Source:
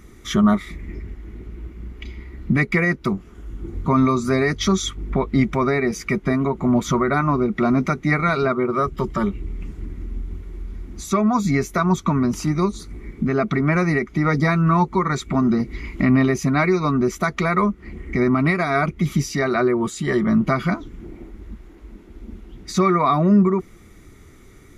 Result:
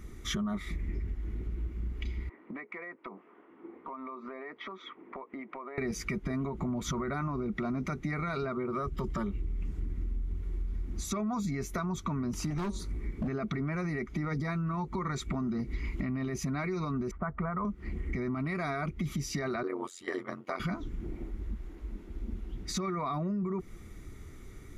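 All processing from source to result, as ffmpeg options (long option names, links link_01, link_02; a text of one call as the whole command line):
ffmpeg -i in.wav -filter_complex "[0:a]asettb=1/sr,asplit=3[link_01][link_02][link_03];[link_01]atrim=end=2.294[link_04];[link_02]atrim=start=2.29:end=5.78,asetpts=PTS-STARTPTS,afade=type=in:duration=0.004:curve=qsin,afade=type=out:start_time=3.486:duration=0.004:curve=qsin,highpass=frequency=340:width=0.5412,highpass=frequency=340:width=1.3066,equalizer=frequency=380:width_type=q:width=4:gain=-5,equalizer=frequency=1000:width_type=q:width=4:gain=5,equalizer=frequency=1500:width_type=q:width=4:gain=-5,lowpass=frequency=2200:width=0.5412,lowpass=frequency=2200:width=1.3066,acompressor=threshold=-33dB:ratio=16:attack=3.2:release=140:knee=1:detection=peak[link_05];[link_03]atrim=start=5.776[link_06];[link_04][link_05]acrossfade=duration=0.004:curve1=hsin:curve2=qsin[link_07];[link_07][link_06]acrossfade=duration=0.004:curve1=qsin:curve2=hsin,asettb=1/sr,asplit=3[link_08][link_09][link_10];[link_08]atrim=end=12.504[link_11];[link_09]atrim=start=12.5:end=13.28,asetpts=PTS-STARTPTS,afade=type=in:duration=0.004:curve=qsin,afade=type=out:start_time=0.776:duration=0.004:curve=qsin,asoftclip=type=hard:threshold=-21.5dB,bandreject=frequency=189.2:width_type=h:width=4,bandreject=frequency=378.4:width_type=h:width=4,bandreject=frequency=567.6:width_type=h:width=4,bandreject=frequency=756.8:width_type=h:width=4,bandreject=frequency=946:width_type=h:width=4,bandreject=frequency=1135.2:width_type=h:width=4[link_12];[link_10]atrim=start=13.276[link_13];[link_11][link_12]acrossfade=duration=0.004:curve1=hsin:curve2=qsin[link_14];[link_14][link_13]acrossfade=duration=0.004:curve1=qsin:curve2=hsin,asettb=1/sr,asplit=3[link_15][link_16][link_17];[link_15]atrim=end=17.114[link_18];[link_16]atrim=start=17.11:end=17.65,asetpts=PTS-STARTPTS,afade=type=in:duration=0.004:curve=qsin,afade=type=out:start_time=0.536:duration=0.004:curve=qsin,lowpass=frequency=1400:width=0.5412,lowpass=frequency=1400:width=1.3066,equalizer=frequency=330:width=1.3:gain=-10[link_19];[link_17]atrim=start=17.646[link_20];[link_18][link_19]acrossfade=duration=0.004:curve1=hsin:curve2=qsin[link_21];[link_21][link_20]acrossfade=duration=0.004:curve1=qsin:curve2=hsin,asettb=1/sr,asplit=3[link_22][link_23][link_24];[link_22]atrim=end=19.634[link_25];[link_23]atrim=start=19.63:end=20.6,asetpts=PTS-STARTPTS,afade=type=in:duration=0.004:curve=qsin,afade=type=out:start_time=0.966:duration=0.004:curve=qsin,highpass=frequency=360:width=0.5412,highpass=frequency=360:width=1.3066,agate=range=-7dB:threshold=-30dB:ratio=16:release=100:detection=peak,tremolo=f=89:d=0.857[link_26];[link_24]atrim=start=20.596[link_27];[link_25][link_26]acrossfade=duration=0.004:curve1=hsin:curve2=qsin[link_28];[link_28][link_27]acrossfade=duration=0.004:curve1=qsin:curve2=hsin,lowshelf=frequency=110:gain=7.5,alimiter=limit=-15dB:level=0:latency=1:release=29,acompressor=threshold=-25dB:ratio=6,volume=-5dB" out.wav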